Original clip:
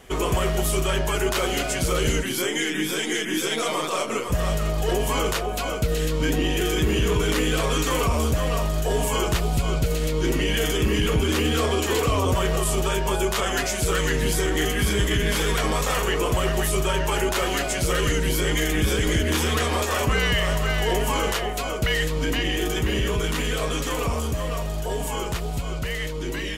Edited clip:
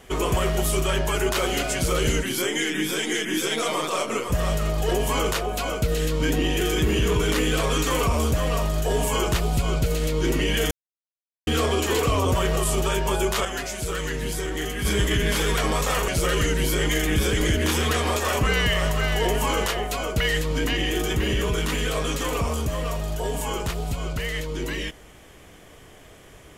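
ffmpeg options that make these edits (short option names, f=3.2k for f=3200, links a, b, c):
-filter_complex "[0:a]asplit=6[a][b][c][d][e][f];[a]atrim=end=10.71,asetpts=PTS-STARTPTS,afade=t=out:st=10.706:d=0.004:c=hsin[g];[b]atrim=start=10.71:end=11.47,asetpts=PTS-STARTPTS,volume=0[h];[c]atrim=start=11.47:end=13.452,asetpts=PTS-STARTPTS,afade=t=in:d=0.004:c=hsin[i];[d]atrim=start=13.448:end=14.852,asetpts=PTS-STARTPTS,volume=-5.5dB[j];[e]atrim=start=14.848:end=16.082[k];[f]atrim=start=17.738[l];[g][h][i]concat=n=3:v=0:a=1[m];[m][j]acrossfade=d=0.004:c1=hsin:c2=hsin[n];[n][k]acrossfade=d=0.004:c1=hsin:c2=hsin[o];[o][l]acrossfade=d=0.004:c1=hsin:c2=hsin"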